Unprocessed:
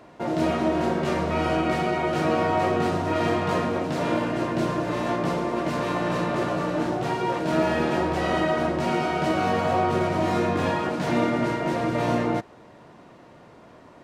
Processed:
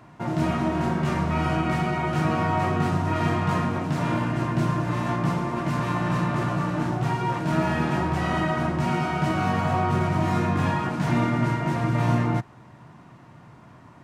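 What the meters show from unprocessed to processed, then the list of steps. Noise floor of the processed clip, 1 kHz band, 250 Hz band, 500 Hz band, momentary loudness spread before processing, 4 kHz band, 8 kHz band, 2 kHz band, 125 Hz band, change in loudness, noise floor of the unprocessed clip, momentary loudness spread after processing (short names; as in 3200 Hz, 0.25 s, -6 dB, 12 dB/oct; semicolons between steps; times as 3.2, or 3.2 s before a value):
-49 dBFS, -0.5 dB, 0.0 dB, -5.5 dB, 3 LU, -3.0 dB, -1.0 dB, -0.5 dB, +7.0 dB, 0.0 dB, -49 dBFS, 3 LU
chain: graphic EQ 125/500/1000/4000 Hz +10/-10/+3/-4 dB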